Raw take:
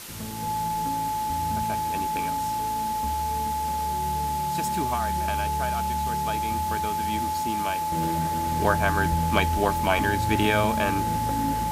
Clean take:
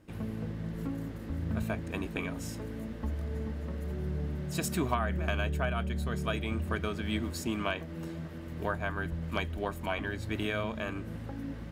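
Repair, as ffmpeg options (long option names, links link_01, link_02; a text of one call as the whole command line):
ffmpeg -i in.wav -af "adeclick=threshold=4,bandreject=frequency=860:width=30,afwtdn=0.011,asetnsamples=nb_out_samples=441:pad=0,asendcmd='7.92 volume volume -10dB',volume=0dB" out.wav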